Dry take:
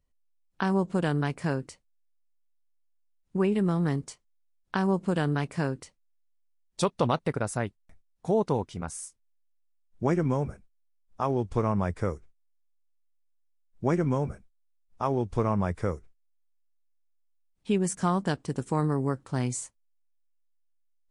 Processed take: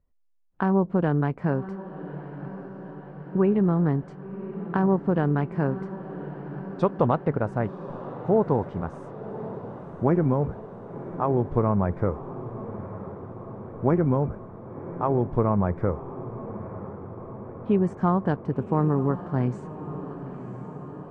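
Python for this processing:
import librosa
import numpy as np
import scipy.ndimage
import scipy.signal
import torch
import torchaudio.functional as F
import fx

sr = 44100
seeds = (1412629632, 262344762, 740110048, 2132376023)

p1 = scipy.signal.sosfilt(scipy.signal.butter(2, 1300.0, 'lowpass', fs=sr, output='sos'), x)
p2 = p1 + fx.echo_diffused(p1, sr, ms=1050, feedback_pct=69, wet_db=-13.0, dry=0)
y = p2 * librosa.db_to_amplitude(4.0)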